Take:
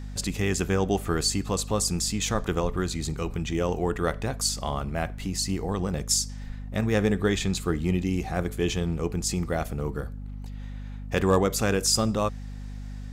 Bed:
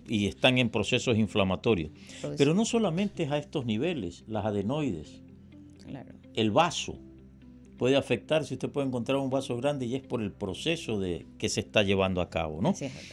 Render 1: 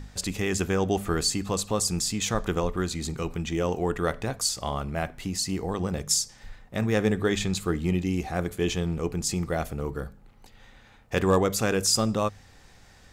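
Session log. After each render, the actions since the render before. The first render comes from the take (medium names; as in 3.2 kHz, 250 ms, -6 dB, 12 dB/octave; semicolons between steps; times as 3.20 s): de-hum 50 Hz, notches 5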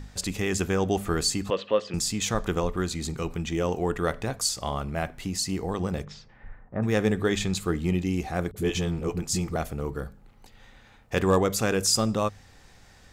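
1.50–1.94 s: cabinet simulation 280–3300 Hz, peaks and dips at 540 Hz +9 dB, 780 Hz -8 dB, 1.8 kHz +7 dB, 3 kHz +10 dB; 6.04–6.82 s: low-pass 3.3 kHz -> 1.4 kHz 24 dB/octave; 8.51–9.56 s: phase dispersion highs, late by 52 ms, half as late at 330 Hz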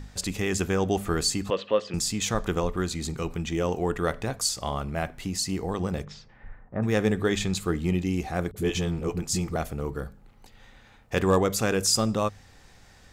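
no audible change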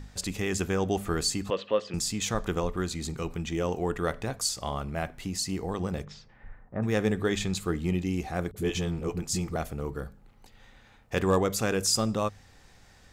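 trim -2.5 dB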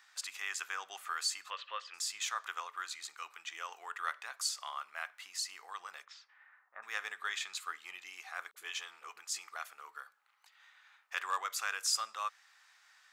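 Chebyshev high-pass 1.2 kHz, order 3; peaking EQ 13 kHz -7.5 dB 2.4 oct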